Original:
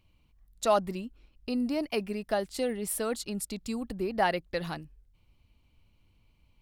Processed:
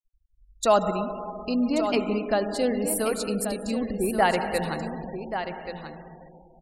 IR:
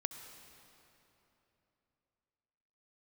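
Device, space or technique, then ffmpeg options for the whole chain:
cave: -filter_complex "[0:a]aecho=1:1:181:0.133[a];[1:a]atrim=start_sample=2205[b];[a][b]afir=irnorm=-1:irlink=0,afftdn=nr=12:nf=-50,afftfilt=real='re*gte(hypot(re,im),0.00562)':imag='im*gte(hypot(re,im),0.00562)':win_size=1024:overlap=0.75,aecho=1:1:1133:0.355,volume=6dB"

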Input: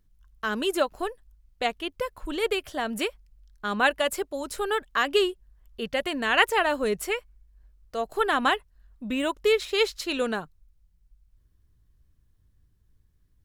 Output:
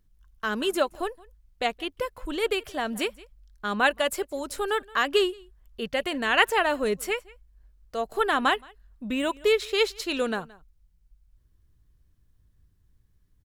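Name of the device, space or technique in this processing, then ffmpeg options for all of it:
ducked delay: -filter_complex "[0:a]asplit=3[a][b][c];[b]adelay=172,volume=-8dB[d];[c]apad=whole_len=600388[e];[d][e]sidechaincompress=threshold=-36dB:ratio=8:attack=7:release=1500[f];[a][f]amix=inputs=2:normalize=0"

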